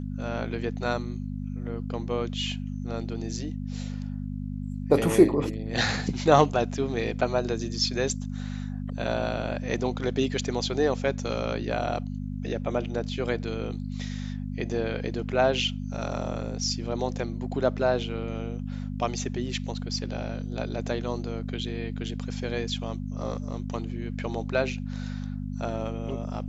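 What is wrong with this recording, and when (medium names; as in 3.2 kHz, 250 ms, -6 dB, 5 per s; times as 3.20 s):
hum 50 Hz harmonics 5 -33 dBFS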